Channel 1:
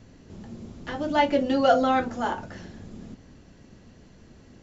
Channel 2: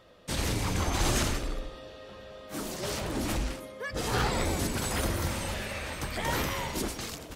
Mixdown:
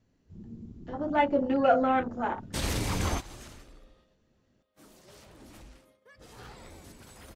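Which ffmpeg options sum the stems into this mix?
ffmpeg -i stem1.wav -i stem2.wav -filter_complex "[0:a]afwtdn=0.0251,volume=-3dB,asplit=2[link_01][link_02];[1:a]agate=range=-13dB:threshold=-43dB:ratio=16:detection=peak,adelay=2250,volume=0dB[link_03];[link_02]apad=whole_len=423435[link_04];[link_03][link_04]sidechaingate=range=-20dB:threshold=-47dB:ratio=16:detection=peak[link_05];[link_01][link_05]amix=inputs=2:normalize=0" out.wav

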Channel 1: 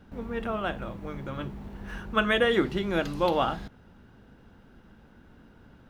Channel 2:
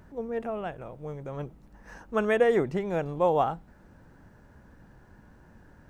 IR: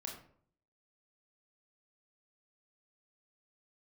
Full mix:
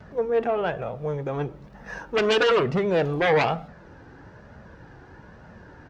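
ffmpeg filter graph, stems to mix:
-filter_complex "[0:a]volume=-5dB[link_01];[1:a]lowpass=frequency=5700:width=0.5412,lowpass=frequency=5700:width=1.3066,aeval=exprs='0.299*sin(PI/2*3.98*val(0)/0.299)':channel_layout=same,volume=-1,adelay=4.7,volume=-3dB,asplit=3[link_02][link_03][link_04];[link_03]volume=-11dB[link_05];[link_04]apad=whole_len=260025[link_06];[link_01][link_06]sidechaincompress=threshold=-21dB:ratio=8:attack=16:release=681[link_07];[2:a]atrim=start_sample=2205[link_08];[link_05][link_08]afir=irnorm=-1:irlink=0[link_09];[link_07][link_02][link_09]amix=inputs=3:normalize=0,highpass=frequency=120:poles=1,flanger=delay=1.4:depth=1.3:regen=-40:speed=1.1:shape=triangular"

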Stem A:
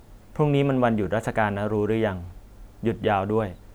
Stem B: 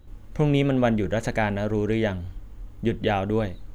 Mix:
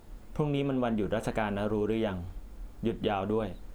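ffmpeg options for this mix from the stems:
ffmpeg -i stem1.wav -i stem2.wav -filter_complex "[0:a]equalizer=frequency=100:width_type=o:width=0.61:gain=-12.5,bandreject=frequency=6000:width=25,flanger=delay=5.5:depth=3.1:regen=-79:speed=2:shape=sinusoidal,volume=1dB[link_01];[1:a]volume=-9.5dB[link_02];[link_01][link_02]amix=inputs=2:normalize=0,acompressor=threshold=-25dB:ratio=6" out.wav

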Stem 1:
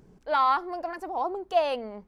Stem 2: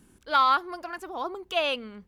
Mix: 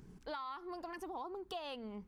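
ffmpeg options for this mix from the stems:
ffmpeg -i stem1.wav -i stem2.wav -filter_complex "[0:a]equalizer=frequency=590:width=1.4:gain=-11,acompressor=threshold=-27dB:ratio=6,volume=0.5dB,asplit=2[link_01][link_02];[1:a]acompressor=threshold=-29dB:ratio=6,volume=-8.5dB[link_03];[link_02]apad=whole_len=91428[link_04];[link_03][link_04]sidechaingate=range=-33dB:threshold=-53dB:ratio=16:detection=peak[link_05];[link_01][link_05]amix=inputs=2:normalize=0,acompressor=threshold=-42dB:ratio=5" out.wav

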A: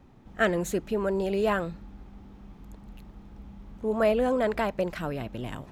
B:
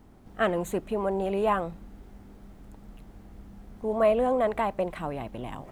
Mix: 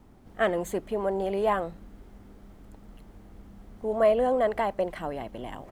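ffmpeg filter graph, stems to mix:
ffmpeg -i stem1.wav -i stem2.wav -filter_complex "[0:a]volume=-10.5dB[link_01];[1:a]volume=-1,adelay=1,volume=-1dB[link_02];[link_01][link_02]amix=inputs=2:normalize=0" out.wav

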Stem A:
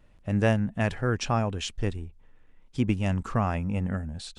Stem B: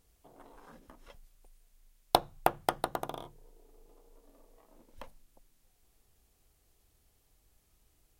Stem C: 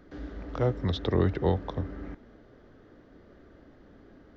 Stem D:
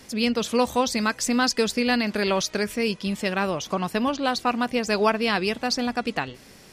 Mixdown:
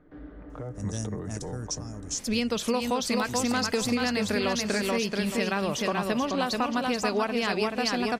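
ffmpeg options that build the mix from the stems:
ffmpeg -i stem1.wav -i stem2.wav -i stem3.wav -i stem4.wav -filter_complex "[0:a]acrossover=split=280|3000[link_01][link_02][link_03];[link_02]acompressor=threshold=-39dB:ratio=2.5[link_04];[link_01][link_04][link_03]amix=inputs=3:normalize=0,highshelf=frequency=4200:width_type=q:width=3:gain=13.5,alimiter=limit=-12.5dB:level=0:latency=1:release=394,adelay=500,volume=-8.5dB[link_05];[1:a]adelay=1050,volume=-8.5dB[link_06];[2:a]lowpass=2100,aecho=1:1:6.6:0.43,alimiter=level_in=0.5dB:limit=-24dB:level=0:latency=1:release=73,volume=-0.5dB,volume=-4.5dB[link_07];[3:a]adelay=2150,volume=1dB,asplit=2[link_08][link_09];[link_09]volume=-4.5dB,aecho=0:1:432|864|1296|1728:1|0.27|0.0729|0.0197[link_10];[link_05][link_06][link_07][link_08][link_10]amix=inputs=5:normalize=0,acompressor=threshold=-23dB:ratio=6" out.wav

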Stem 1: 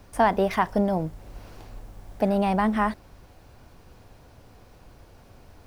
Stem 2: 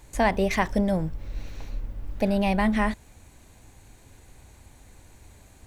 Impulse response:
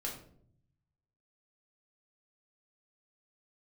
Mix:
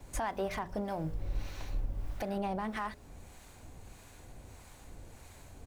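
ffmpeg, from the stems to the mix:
-filter_complex "[0:a]bandreject=frequency=60:width_type=h:width=6,bandreject=frequency=120:width_type=h:width=6,bandreject=frequency=180:width_type=h:width=6,bandreject=frequency=240:width_type=h:width=6,bandreject=frequency=300:width_type=h:width=6,bandreject=frequency=360:width_type=h:width=6,bandreject=frequency=420:width_type=h:width=6,bandreject=frequency=480:width_type=h:width=6,bandreject=frequency=540:width_type=h:width=6,bandreject=frequency=600:width_type=h:width=6,volume=-3dB,asplit=2[link_01][link_02];[1:a]asoftclip=type=hard:threshold=-24.5dB,volume=-1,adelay=3.8,volume=0dB[link_03];[link_02]apad=whole_len=249985[link_04];[link_03][link_04]sidechaincompress=threshold=-31dB:ratio=8:attack=16:release=374[link_05];[link_01][link_05]amix=inputs=2:normalize=0,acrossover=split=760[link_06][link_07];[link_06]aeval=exprs='val(0)*(1-0.5/2+0.5/2*cos(2*PI*1.6*n/s))':channel_layout=same[link_08];[link_07]aeval=exprs='val(0)*(1-0.5/2-0.5/2*cos(2*PI*1.6*n/s))':channel_layout=same[link_09];[link_08][link_09]amix=inputs=2:normalize=0,alimiter=level_in=1.5dB:limit=-24dB:level=0:latency=1:release=192,volume=-1.5dB"

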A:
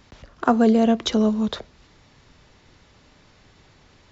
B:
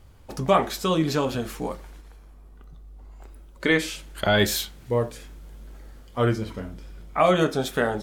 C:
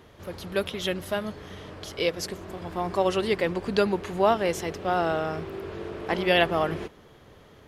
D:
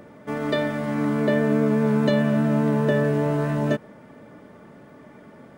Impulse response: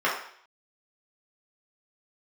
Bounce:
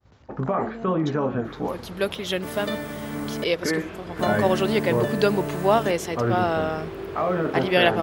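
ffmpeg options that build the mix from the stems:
-filter_complex "[0:a]acompressor=threshold=-29dB:ratio=2.5,volume=-10dB[link_01];[1:a]lowpass=frequency=1800:width=0.5412,lowpass=frequency=1800:width=1.3066,alimiter=limit=-18dB:level=0:latency=1:release=32,volume=2.5dB,asplit=2[link_02][link_03];[link_03]volume=-18.5dB[link_04];[2:a]adelay=1450,volume=2dB[link_05];[3:a]aemphasis=mode=production:type=75fm,adelay=2150,volume=-7dB,asplit=3[link_06][link_07][link_08];[link_06]atrim=end=3.44,asetpts=PTS-STARTPTS,afade=type=out:start_time=3.436:duration=0.004:curve=hsin[link_09];[link_07]atrim=start=3.44:end=4.19,asetpts=PTS-STARTPTS,volume=0[link_10];[link_08]atrim=start=4.19,asetpts=PTS-STARTPTS,afade=type=in:duration=0.004:curve=hsin[link_11];[link_09][link_10][link_11]concat=n=3:v=0:a=1[link_12];[link_04]aecho=0:1:428:1[link_13];[link_01][link_02][link_05][link_12][link_13]amix=inputs=5:normalize=0,highpass=89,agate=range=-33dB:threshold=-48dB:ratio=3:detection=peak"

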